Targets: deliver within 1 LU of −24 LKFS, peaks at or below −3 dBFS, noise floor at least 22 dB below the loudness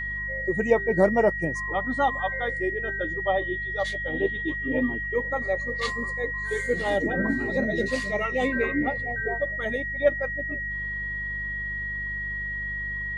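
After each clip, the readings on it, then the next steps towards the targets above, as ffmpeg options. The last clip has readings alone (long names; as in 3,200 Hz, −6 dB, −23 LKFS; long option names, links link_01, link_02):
mains hum 50 Hz; hum harmonics up to 200 Hz; level of the hum −37 dBFS; interfering tone 1,900 Hz; level of the tone −29 dBFS; integrated loudness −26.5 LKFS; sample peak −8.0 dBFS; target loudness −24.0 LKFS
→ -af "bandreject=frequency=50:width_type=h:width=4,bandreject=frequency=100:width_type=h:width=4,bandreject=frequency=150:width_type=h:width=4,bandreject=frequency=200:width_type=h:width=4"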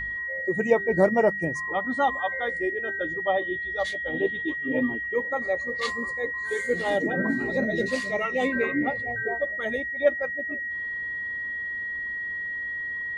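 mains hum none found; interfering tone 1,900 Hz; level of the tone −29 dBFS
→ -af "bandreject=frequency=1900:width=30"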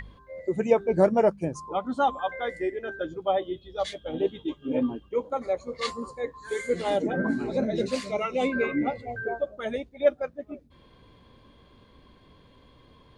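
interfering tone none found; integrated loudness −28.0 LKFS; sample peak −8.5 dBFS; target loudness −24.0 LKFS
→ -af "volume=4dB"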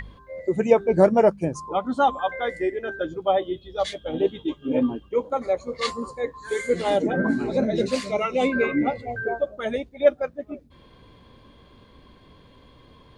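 integrated loudness −24.0 LKFS; sample peak −4.5 dBFS; background noise floor −53 dBFS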